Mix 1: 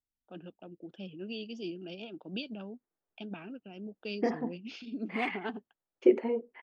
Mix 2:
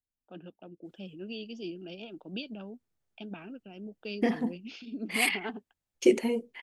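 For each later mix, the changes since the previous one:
second voice: remove Butterworth band-pass 660 Hz, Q 0.51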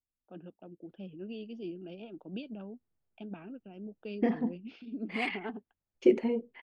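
master: add tape spacing loss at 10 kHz 32 dB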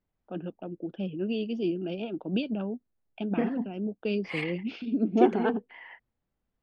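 first voice +11.5 dB; second voice: entry -0.85 s

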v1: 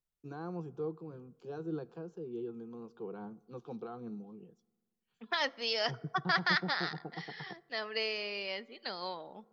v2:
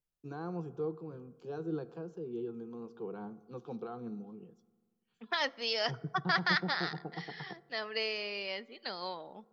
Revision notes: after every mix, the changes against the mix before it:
first voice: send +8.5 dB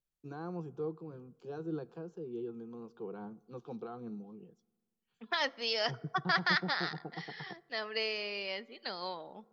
first voice: send -9.0 dB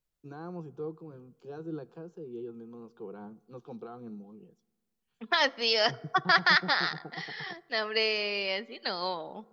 second voice +7.0 dB

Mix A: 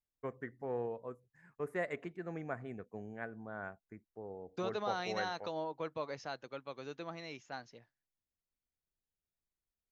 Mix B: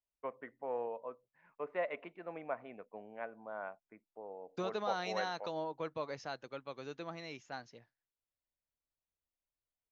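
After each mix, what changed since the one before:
first voice: add speaker cabinet 340–3600 Hz, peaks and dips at 380 Hz -6 dB, 590 Hz +6 dB, 970 Hz +6 dB, 1700 Hz -7 dB, 2600 Hz +5 dB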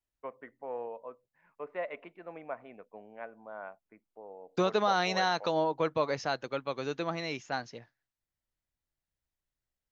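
second voice +10.5 dB

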